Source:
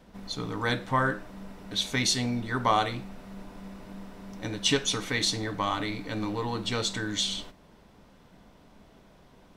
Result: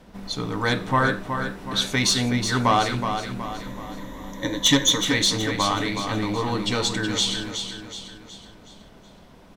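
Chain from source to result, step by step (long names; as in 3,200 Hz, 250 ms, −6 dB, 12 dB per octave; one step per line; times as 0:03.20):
0:03.43–0:05.01: EQ curve with evenly spaced ripples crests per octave 1.1, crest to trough 15 dB
sine wavefolder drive 5 dB, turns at −7 dBFS
on a send: repeating echo 371 ms, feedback 46%, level −7.5 dB
on the sum: level −3.5 dB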